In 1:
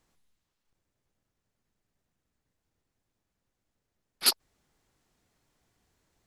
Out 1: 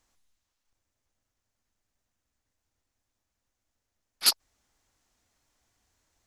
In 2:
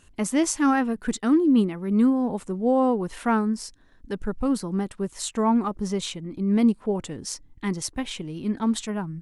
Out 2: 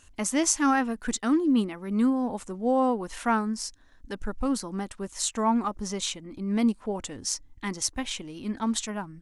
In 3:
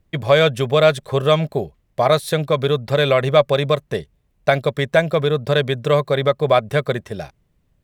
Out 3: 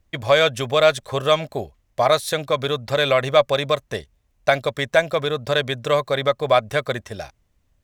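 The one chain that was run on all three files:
fifteen-band graphic EQ 160 Hz -11 dB, 400 Hz -6 dB, 6.3 kHz +5 dB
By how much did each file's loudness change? +1.5 LU, -3.0 LU, -2.0 LU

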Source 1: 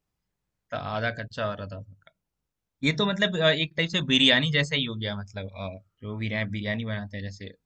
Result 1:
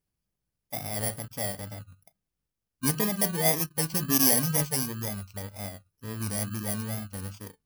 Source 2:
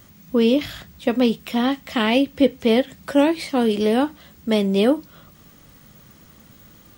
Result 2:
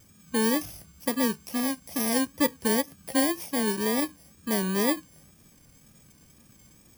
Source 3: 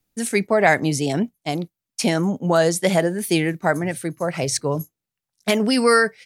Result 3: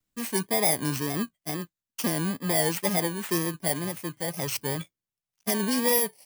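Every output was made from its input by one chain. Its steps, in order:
bit-reversed sample order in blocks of 32 samples; wow and flutter 78 cents; normalise loudness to -27 LUFS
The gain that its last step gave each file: -2.0 dB, -7.5 dB, -7.0 dB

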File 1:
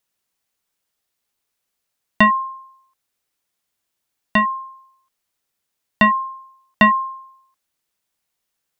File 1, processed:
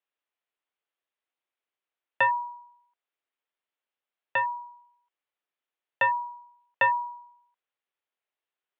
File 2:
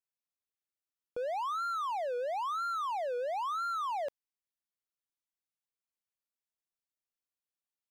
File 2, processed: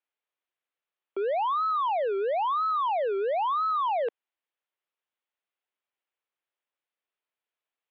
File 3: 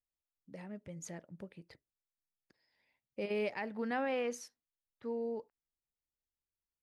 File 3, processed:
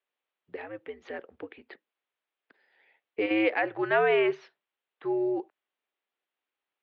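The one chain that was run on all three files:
mistuned SSB -96 Hz 440–3500 Hz; normalise loudness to -27 LUFS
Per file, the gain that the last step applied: -8.5 dB, +8.0 dB, +13.0 dB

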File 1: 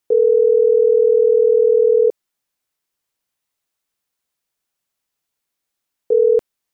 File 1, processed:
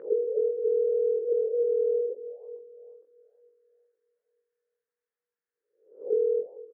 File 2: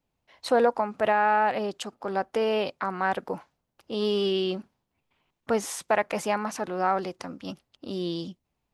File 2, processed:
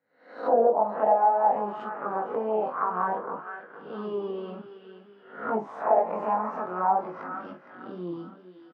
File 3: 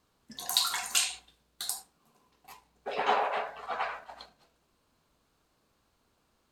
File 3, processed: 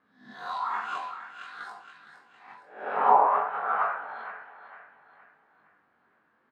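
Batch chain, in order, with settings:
reverse spectral sustain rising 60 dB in 0.51 s; flange 2 Hz, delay 3.2 ms, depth 7 ms, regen +85%; Chebyshev high-pass 180 Hz, order 2; doubling 44 ms -11 dB; thinning echo 463 ms, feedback 40%, high-pass 210 Hz, level -13 dB; compression 4:1, threshold -19 dBFS; chorus 0.55 Hz, delay 18.5 ms, depth 4.7 ms; touch-sensitive low-pass 410–1700 Hz down, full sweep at -21 dBFS; normalise loudness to -27 LUFS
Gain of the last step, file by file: -11.0 dB, +1.5 dB, +6.5 dB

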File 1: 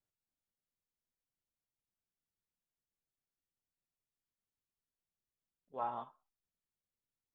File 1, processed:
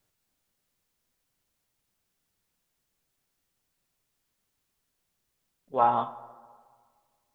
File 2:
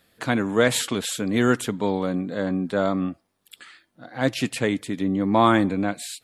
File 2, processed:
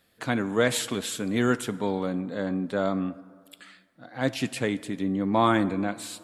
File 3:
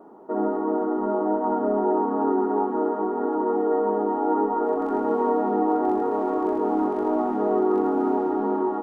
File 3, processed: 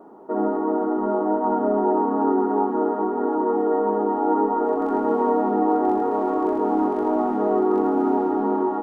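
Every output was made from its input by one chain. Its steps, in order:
plate-style reverb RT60 1.8 s, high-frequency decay 0.5×, DRR 15.5 dB; peak normalisation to -9 dBFS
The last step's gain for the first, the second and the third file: +15.5 dB, -4.0 dB, +1.5 dB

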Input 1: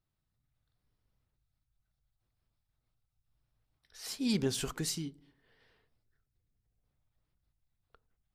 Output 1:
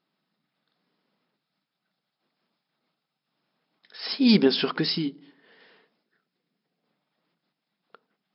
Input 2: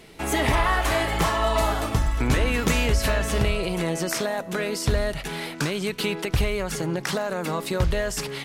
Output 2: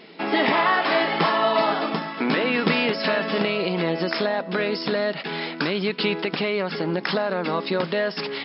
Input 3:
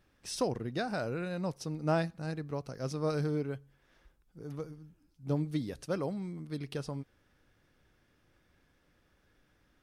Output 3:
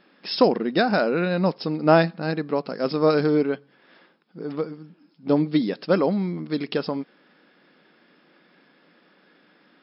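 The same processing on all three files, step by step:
brick-wall FIR band-pass 160–5400 Hz; normalise loudness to -23 LUFS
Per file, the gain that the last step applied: +13.0 dB, +3.0 dB, +14.0 dB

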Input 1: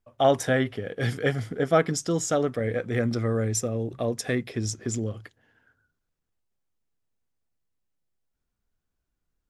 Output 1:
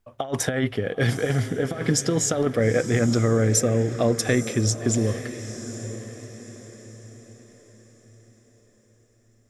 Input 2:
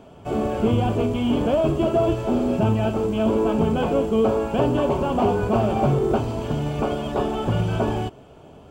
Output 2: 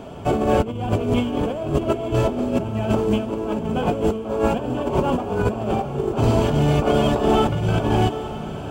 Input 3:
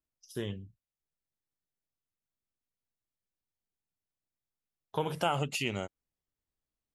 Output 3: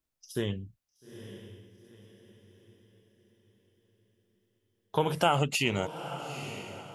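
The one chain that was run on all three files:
compressor with a negative ratio -25 dBFS, ratio -0.5; echo that smears into a reverb 886 ms, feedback 41%, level -11.5 dB; trim +5 dB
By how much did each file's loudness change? +3.0 LU, +0.5 LU, +3.5 LU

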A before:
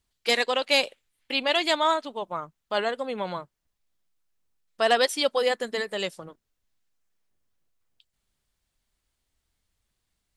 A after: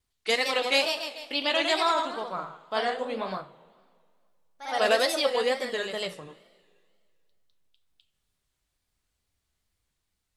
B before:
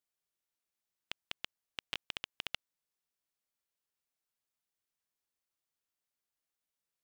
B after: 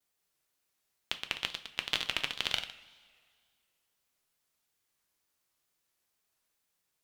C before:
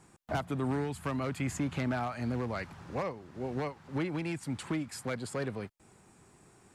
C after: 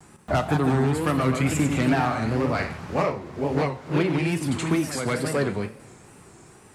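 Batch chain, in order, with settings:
ever faster or slower copies 187 ms, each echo +1 st, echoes 3, each echo -6 dB; two-slope reverb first 0.35 s, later 2 s, from -17 dB, DRR 7 dB; wow and flutter 120 cents; peak normalisation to -9 dBFS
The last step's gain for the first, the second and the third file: -3.0 dB, +8.5 dB, +9.0 dB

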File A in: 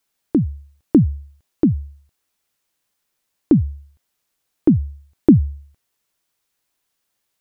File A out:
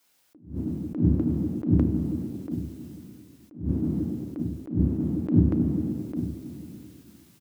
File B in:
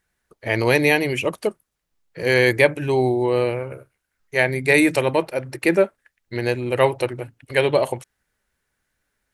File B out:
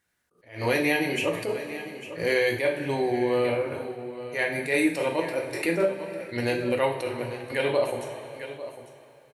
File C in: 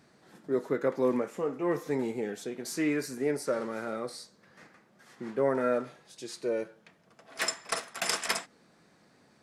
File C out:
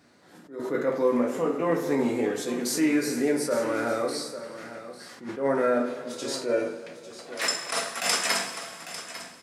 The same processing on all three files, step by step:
high-pass 76 Hz; hum notches 50/100/150/200/250/300/350/400 Hz; level rider gain up to 6 dB; two-slope reverb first 0.38 s, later 2.4 s, from -18 dB, DRR 1 dB; compression 2:1, threshold -24 dBFS; delay 849 ms -13.5 dB; attacks held to a fixed rise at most 150 dB/s; normalise loudness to -27 LUFS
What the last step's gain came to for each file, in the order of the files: +5.5 dB, -3.0 dB, +1.0 dB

